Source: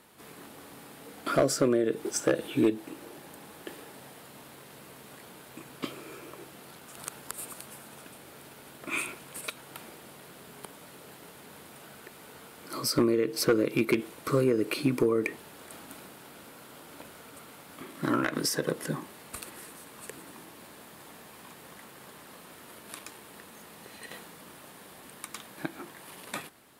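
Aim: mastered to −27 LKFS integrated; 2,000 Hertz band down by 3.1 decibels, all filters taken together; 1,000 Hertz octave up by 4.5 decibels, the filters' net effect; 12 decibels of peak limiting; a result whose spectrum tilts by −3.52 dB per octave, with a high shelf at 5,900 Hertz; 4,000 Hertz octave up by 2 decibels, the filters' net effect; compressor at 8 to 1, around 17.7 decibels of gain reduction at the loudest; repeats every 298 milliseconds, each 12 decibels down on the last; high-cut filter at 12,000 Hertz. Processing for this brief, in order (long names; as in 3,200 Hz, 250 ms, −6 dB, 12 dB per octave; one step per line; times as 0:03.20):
low-pass filter 12,000 Hz
parametric band 1,000 Hz +9 dB
parametric band 2,000 Hz −9 dB
parametric band 4,000 Hz +6 dB
high-shelf EQ 5,900 Hz −3.5 dB
downward compressor 8 to 1, threshold −37 dBFS
brickwall limiter −32.5 dBFS
repeating echo 298 ms, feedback 25%, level −12 dB
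level +18.5 dB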